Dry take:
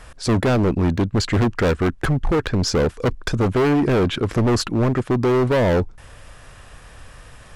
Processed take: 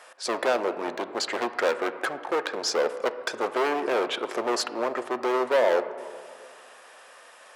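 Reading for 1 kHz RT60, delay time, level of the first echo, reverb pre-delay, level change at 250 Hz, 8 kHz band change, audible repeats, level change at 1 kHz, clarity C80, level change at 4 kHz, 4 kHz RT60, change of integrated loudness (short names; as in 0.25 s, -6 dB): 2.3 s, none, none, 3 ms, -15.0 dB, -3.5 dB, none, -1.5 dB, 13.0 dB, -3.5 dB, 1.1 s, -7.0 dB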